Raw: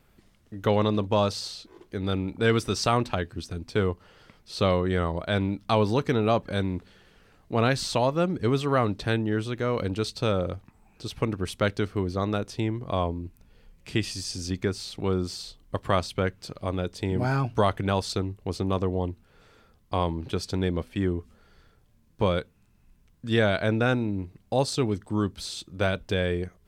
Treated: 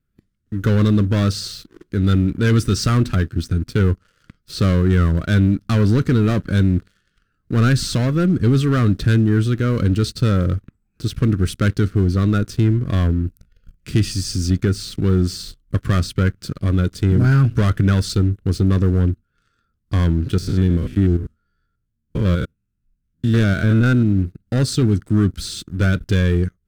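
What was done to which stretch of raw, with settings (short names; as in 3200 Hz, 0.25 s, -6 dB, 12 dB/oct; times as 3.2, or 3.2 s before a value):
20.38–24.19 stepped spectrum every 0.1 s
whole clip: sample leveller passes 3; spectral noise reduction 9 dB; EQ curve 120 Hz 0 dB, 310 Hz -4 dB, 880 Hz -23 dB, 1400 Hz -5 dB, 2200 Hz -12 dB, 10000 Hz -8 dB; gain +5 dB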